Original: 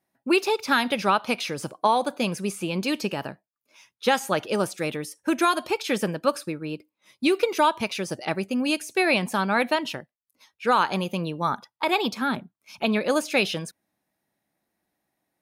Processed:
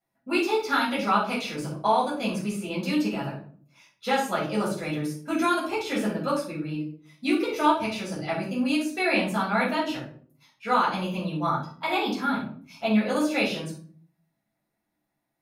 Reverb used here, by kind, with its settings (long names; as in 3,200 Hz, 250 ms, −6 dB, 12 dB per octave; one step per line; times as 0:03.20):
rectangular room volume 420 cubic metres, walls furnished, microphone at 6.8 metres
level −12.5 dB